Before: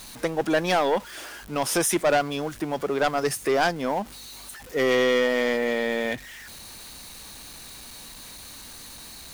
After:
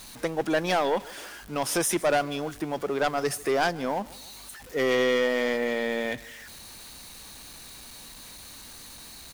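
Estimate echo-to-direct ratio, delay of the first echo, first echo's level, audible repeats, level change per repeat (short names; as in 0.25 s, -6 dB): -20.5 dB, 0.15 s, -21.5 dB, 2, -5.0 dB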